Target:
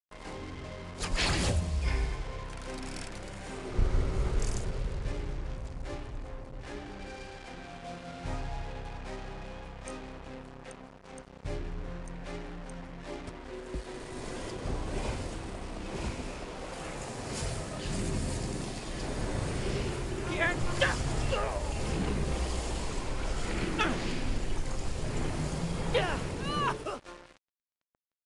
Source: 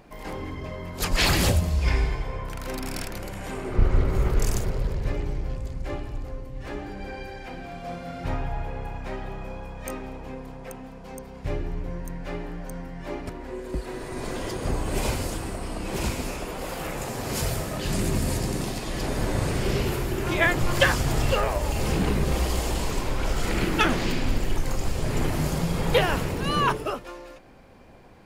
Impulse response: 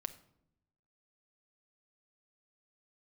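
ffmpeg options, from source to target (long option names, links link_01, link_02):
-filter_complex "[0:a]asettb=1/sr,asplit=3[link_01][link_02][link_03];[link_01]atrim=end=14.504[link_04];[link_02]atrim=start=14.5:end=16.73,asetpts=PTS-STARTPTS,afade=type=in:duration=0.004:curve=qsin,afade=type=out:start_time=2.226:duration=0.004:curve=qsin,highshelf=frequency=5600:gain=-10.5[link_05];[link_03]atrim=start=16.726[link_06];[link_04][link_05]acrossfade=duration=0.004:curve1=hsin:curve2=qsin[link_07];[link_07][link_06]acrossfade=duration=0.004:curve1=qsin:curve2=hsin,acrusher=bits=5:mix=0:aa=0.5,aresample=22050,aresample=44100,volume=-7.5dB"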